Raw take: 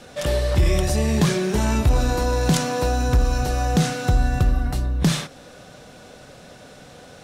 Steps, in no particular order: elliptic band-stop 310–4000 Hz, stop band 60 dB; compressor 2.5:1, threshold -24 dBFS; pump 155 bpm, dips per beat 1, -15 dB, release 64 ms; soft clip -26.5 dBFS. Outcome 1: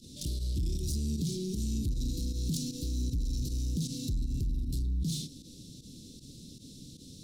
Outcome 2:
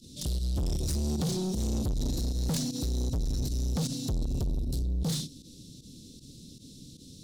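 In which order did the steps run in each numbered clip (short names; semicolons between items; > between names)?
compressor > pump > soft clip > elliptic band-stop; elliptic band-stop > pump > soft clip > compressor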